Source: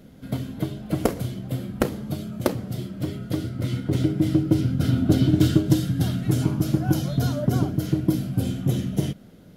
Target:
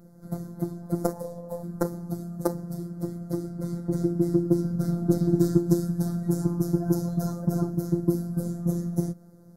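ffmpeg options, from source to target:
-filter_complex "[0:a]asplit=3[s0][s1][s2];[s0]afade=t=out:st=1.12:d=0.02[s3];[s1]aeval=exprs='val(0)*sin(2*PI*370*n/s)':c=same,afade=t=in:st=1.12:d=0.02,afade=t=out:st=1.62:d=0.02[s4];[s2]afade=t=in:st=1.62:d=0.02[s5];[s3][s4][s5]amix=inputs=3:normalize=0,afftfilt=real='hypot(re,im)*cos(PI*b)':imag='0':win_size=1024:overlap=0.75,asuperstop=centerf=2800:order=4:qfactor=0.64"

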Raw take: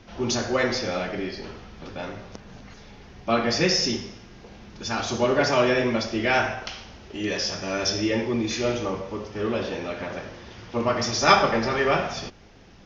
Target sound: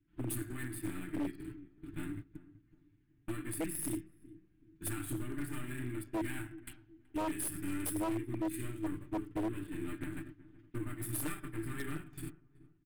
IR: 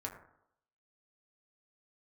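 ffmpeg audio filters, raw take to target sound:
-filter_complex "[0:a]equalizer=f=93:t=o:w=2.6:g=7,acompressor=threshold=0.0355:ratio=16,agate=range=0.0355:threshold=0.0224:ratio=16:detection=peak,aecho=1:1:6.7:0.75,aeval=exprs='clip(val(0),-1,0.00708)':c=same,firequalizer=gain_entry='entry(120,0);entry(210,-7);entry(320,10);entry(490,-27);entry(910,-16);entry(1600,-4);entry(3600,-12);entry(5800,-28);entry(8200,13)':delay=0.05:min_phase=1,asplit=2[s0][s1];[s1]adelay=376,lowpass=f=960:p=1,volume=0.133,asplit=2[s2][s3];[s3]adelay=376,lowpass=f=960:p=1,volume=0.35,asplit=2[s4][s5];[s5]adelay=376,lowpass=f=960:p=1,volume=0.35[s6];[s2][s4][s6]amix=inputs=3:normalize=0[s7];[s0][s7]amix=inputs=2:normalize=0,aeval=exprs='0.0422*(abs(mod(val(0)/0.0422+3,4)-2)-1)':c=same,volume=0.841"

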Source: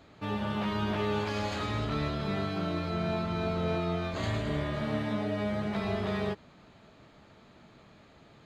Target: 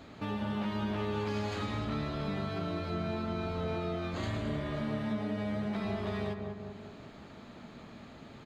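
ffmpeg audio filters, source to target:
-filter_complex "[0:a]equalizer=f=240:w=4.2:g=6,asplit=2[s0][s1];[s1]adelay=192,lowpass=f=1400:p=1,volume=0.473,asplit=2[s2][s3];[s3]adelay=192,lowpass=f=1400:p=1,volume=0.42,asplit=2[s4][s5];[s5]adelay=192,lowpass=f=1400:p=1,volume=0.42,asplit=2[s6][s7];[s7]adelay=192,lowpass=f=1400:p=1,volume=0.42,asplit=2[s8][s9];[s9]adelay=192,lowpass=f=1400:p=1,volume=0.42[s10];[s0][s2][s4][s6][s8][s10]amix=inputs=6:normalize=0,acompressor=threshold=0.00631:ratio=2,volume=1.68"

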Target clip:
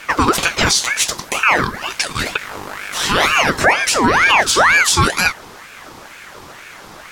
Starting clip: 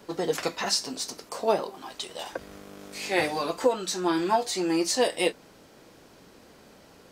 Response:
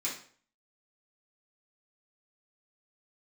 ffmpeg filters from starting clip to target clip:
-af "alimiter=level_in=8.91:limit=0.891:release=50:level=0:latency=1,aeval=exprs='val(0)*sin(2*PI*1300*n/s+1300*0.55/2.1*sin(2*PI*2.1*n/s))':c=same"

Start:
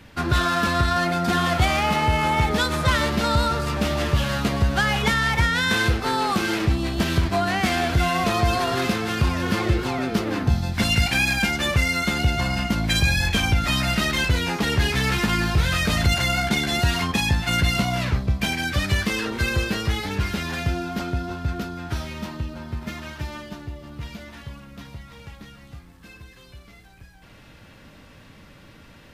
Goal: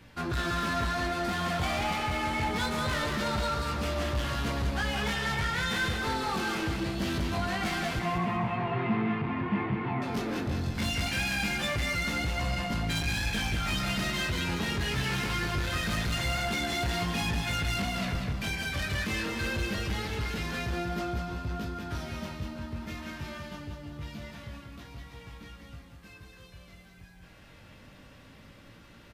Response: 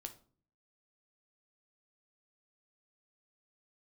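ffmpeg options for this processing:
-filter_complex "[0:a]flanger=delay=17:depth=5.5:speed=0.24,asoftclip=type=tanh:threshold=0.0631,asettb=1/sr,asplit=3[s0][s1][s2];[s0]atrim=end=7.994[s3];[s1]atrim=start=7.99:end=10.02,asetpts=PTS-STARTPTS,afade=t=in:d=0.004:c=qsin,afade=t=out:st=2.026:d=0.004:c=qsin,highpass=f=110:w=0.5412,highpass=f=110:w=1.3066,equalizer=f=130:t=q:w=4:g=9,equalizer=f=210:t=q:w=4:g=8,equalizer=f=530:t=q:w=4:g=-9,equalizer=f=960:t=q:w=4:g=6,equalizer=f=1500:t=q:w=4:g=-7,equalizer=f=2200:t=q:w=4:g=3,lowpass=f=2400:w=0.5412,lowpass=f=2400:w=1.3066[s4];[s2]atrim=start=10.016[s5];[s3][s4]acrossfade=d=0.004:c1=hsin:c2=qsin[s6];[s6][s5]acrossfade=d=0.004:c1=qsin:c2=hsin,aecho=1:1:190|380|570|760|950:0.562|0.214|0.0812|0.0309|0.0117,volume=0.708" -ar 48000 -c:a aac -b:a 192k

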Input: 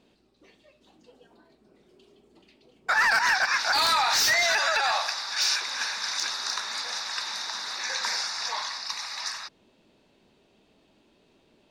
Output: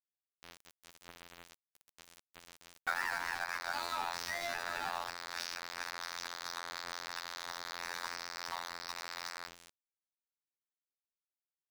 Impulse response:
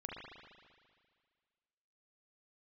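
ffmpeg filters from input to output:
-filter_complex "[0:a]highshelf=f=4900:g=-8,asplit=2[s0][s1];[s1]adelay=67,lowpass=f=1900:p=1,volume=0.447,asplit=2[s2][s3];[s3]adelay=67,lowpass=f=1900:p=1,volume=0.34,asplit=2[s4][s5];[s5]adelay=67,lowpass=f=1900:p=1,volume=0.34,asplit=2[s6][s7];[s7]adelay=67,lowpass=f=1900:p=1,volume=0.34[s8];[s0][s2][s4][s6][s8]amix=inputs=5:normalize=0,asplit=2[s9][s10];[1:a]atrim=start_sample=2205,asetrate=70560,aresample=44100[s11];[s10][s11]afir=irnorm=-1:irlink=0,volume=0.211[s12];[s9][s12]amix=inputs=2:normalize=0,afreqshift=15,afftfilt=real='hypot(re,im)*cos(PI*b)':imag='0':win_size=2048:overlap=0.75,acompressor=threshold=0.00708:ratio=4,aeval=exprs='val(0)*gte(abs(val(0)),0.00473)':c=same,adynamicequalizer=threshold=0.002:dfrequency=1700:dqfactor=0.7:tfrequency=1700:tqfactor=0.7:attack=5:release=100:ratio=0.375:range=2:mode=cutabove:tftype=highshelf,volume=2.51"

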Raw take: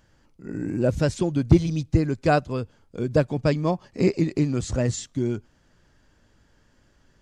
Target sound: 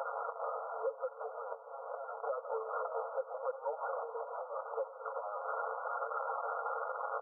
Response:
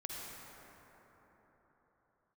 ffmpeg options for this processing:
-filter_complex "[0:a]aeval=exprs='val(0)+0.5*0.0562*sgn(val(0))':c=same,aecho=1:1:6.3:0.39,asplit=2[s0][s1];[1:a]atrim=start_sample=2205[s2];[s1][s2]afir=irnorm=-1:irlink=0,volume=0.211[s3];[s0][s3]amix=inputs=2:normalize=0,acompressor=threshold=0.0562:ratio=16,asoftclip=type=hard:threshold=0.075,afftfilt=real='re*between(b*sr/4096,510,1700)':imag='im*between(b*sr/4096,510,1700)':win_size=4096:overlap=0.75,flanger=delay=5.5:depth=6.3:regen=-27:speed=0.81:shape=triangular,alimiter=level_in=3.76:limit=0.0631:level=0:latency=1:release=370,volume=0.266,acontrast=23,asetrate=38170,aresample=44100,atempo=1.15535,aecho=1:1:92:0.0891,volume=1.5"

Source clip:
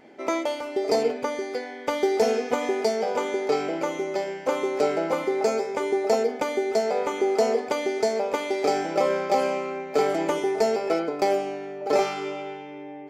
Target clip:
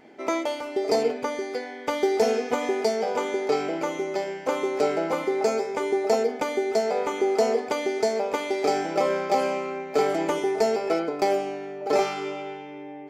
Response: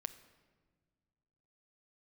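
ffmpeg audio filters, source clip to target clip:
-af "bandreject=f=550:w=14"

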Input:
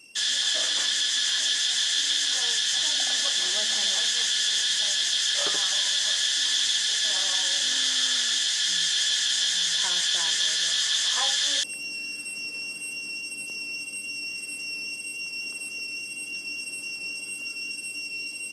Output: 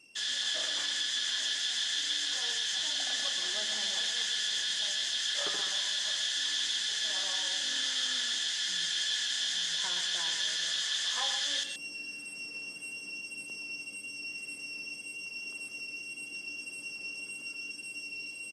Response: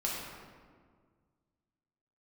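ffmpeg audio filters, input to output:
-filter_complex "[0:a]highshelf=f=6100:g=-8,asplit=2[s0][s1];[s1]aecho=0:1:125:0.398[s2];[s0][s2]amix=inputs=2:normalize=0,volume=0.501"

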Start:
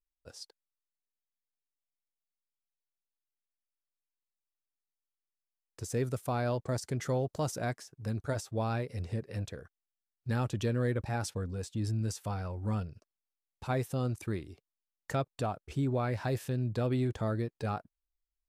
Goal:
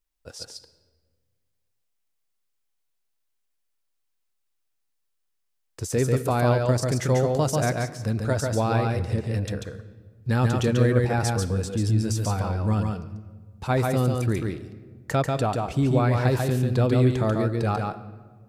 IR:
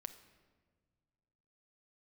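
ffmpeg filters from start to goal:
-filter_complex "[0:a]asplit=2[s0][s1];[1:a]atrim=start_sample=2205,adelay=141[s2];[s1][s2]afir=irnorm=-1:irlink=0,volume=1.19[s3];[s0][s3]amix=inputs=2:normalize=0,volume=2.66"

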